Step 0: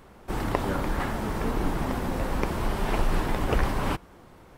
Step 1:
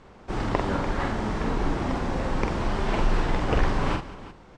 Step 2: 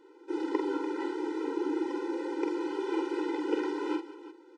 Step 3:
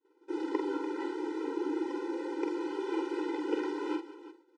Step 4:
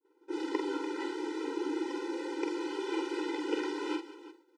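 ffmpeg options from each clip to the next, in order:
-filter_complex "[0:a]lowpass=f=7100:w=0.5412,lowpass=f=7100:w=1.3066,asplit=2[s0][s1];[s1]aecho=0:1:46|188|355:0.596|0.168|0.168[s2];[s0][s2]amix=inputs=2:normalize=0"
-af "equalizer=f=330:t=o:w=0.62:g=12.5,afftfilt=real='re*eq(mod(floor(b*sr/1024/260),2),1)':imag='im*eq(mod(floor(b*sr/1024/260),2),1)':win_size=1024:overlap=0.75,volume=0.447"
-af "agate=range=0.0224:threshold=0.00447:ratio=3:detection=peak,volume=0.794"
-af "adynamicequalizer=threshold=0.002:dfrequency=1800:dqfactor=0.7:tfrequency=1800:tqfactor=0.7:attack=5:release=100:ratio=0.375:range=4:mode=boostabove:tftype=highshelf,volume=0.891"

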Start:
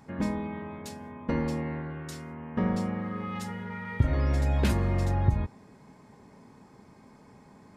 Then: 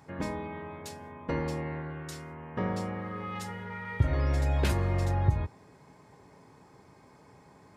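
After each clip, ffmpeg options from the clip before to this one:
-af "highpass=54,equalizer=f=220:t=o:w=0.34:g=-13.5"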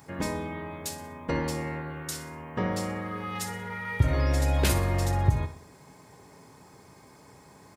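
-filter_complex "[0:a]crystalizer=i=2:c=0,asplit=2[s0][s1];[s1]aecho=0:1:61|122|183|244:0.251|0.108|0.0464|0.02[s2];[s0][s2]amix=inputs=2:normalize=0,volume=1.33"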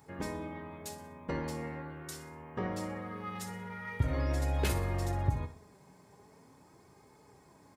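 -filter_complex "[0:a]flanger=delay=2.3:depth=2.9:regen=66:speed=0.42:shape=sinusoidal,asplit=2[s0][s1];[s1]adynamicsmooth=sensitivity=5.5:basefreq=1600,volume=0.473[s2];[s0][s2]amix=inputs=2:normalize=0,volume=0.562"

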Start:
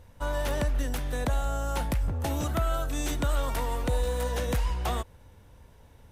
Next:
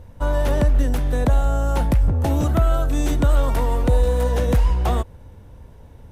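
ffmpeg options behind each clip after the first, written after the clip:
-af "tiltshelf=f=940:g=5,volume=2"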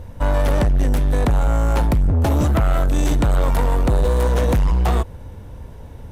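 -af "asoftclip=type=tanh:threshold=0.1,volume=2.24"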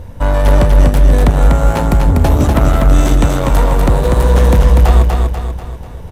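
-af "aecho=1:1:244|488|732|976|1220|1464:0.668|0.321|0.154|0.0739|0.0355|0.017,volume=1.78"

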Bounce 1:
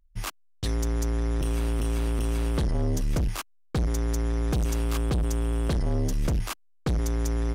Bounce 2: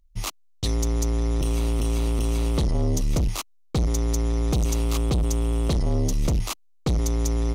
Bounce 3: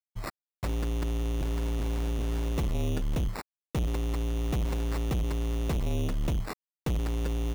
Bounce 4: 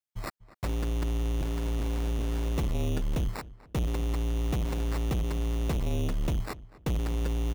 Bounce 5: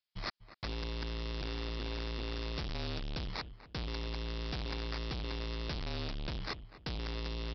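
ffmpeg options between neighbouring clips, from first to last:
-af "equalizer=f=1600:t=o:w=0.33:g=-12,equalizer=f=4000:t=o:w=0.33:g=4,equalizer=f=6300:t=o:w=0.33:g=5,volume=1.41"
-af "acrusher=samples=14:mix=1:aa=0.000001,aeval=exprs='sgn(val(0))*max(abs(val(0))-0.00398,0)':c=same,volume=0.501"
-filter_complex "[0:a]asplit=2[s0][s1];[s1]adelay=245,lowpass=f=2400:p=1,volume=0.126,asplit=2[s2][s3];[s3]adelay=245,lowpass=f=2400:p=1,volume=0.31,asplit=2[s4][s5];[s5]adelay=245,lowpass=f=2400:p=1,volume=0.31[s6];[s0][s2][s4][s6]amix=inputs=4:normalize=0"
-af "aresample=11025,volume=53.1,asoftclip=hard,volume=0.0188,aresample=44100,crystalizer=i=6.5:c=0,volume=0.708"

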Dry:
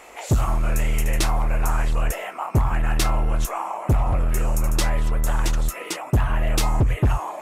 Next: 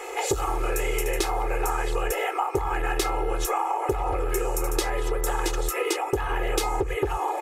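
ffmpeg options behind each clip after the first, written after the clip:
-af "lowshelf=f=280:t=q:w=3:g=-11,aecho=1:1:2.4:0.91,acompressor=threshold=0.0501:ratio=6,volume=1.58"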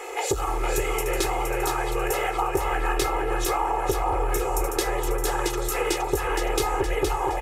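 -af "aecho=1:1:467|934|1401|1868|2335|2802:0.562|0.281|0.141|0.0703|0.0351|0.0176"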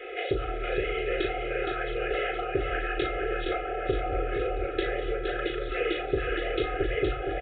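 -filter_complex "[0:a]asuperstop=centerf=980:order=20:qfactor=1.9,asplit=2[s0][s1];[s1]adelay=38,volume=0.501[s2];[s0][s2]amix=inputs=2:normalize=0,aresample=8000,aresample=44100,volume=0.75"

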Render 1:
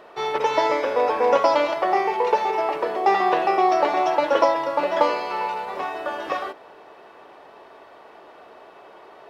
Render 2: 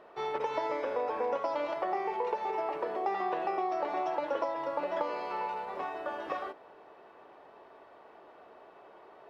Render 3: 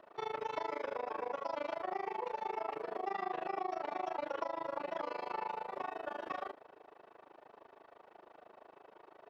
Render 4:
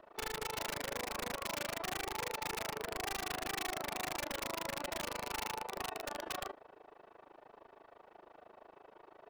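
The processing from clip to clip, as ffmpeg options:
-af "highshelf=f=2800:g=-9,acompressor=threshold=0.0891:ratio=6,volume=0.422"
-filter_complex "[0:a]acrossover=split=270|860[s0][s1][s2];[s1]alimiter=level_in=2.82:limit=0.0631:level=0:latency=1,volume=0.355[s3];[s0][s3][s2]amix=inputs=3:normalize=0,tremolo=f=26:d=0.974"
-af "lowshelf=f=84:g=11,aeval=exprs='(mod(39.8*val(0)+1,2)-1)/39.8':c=same"

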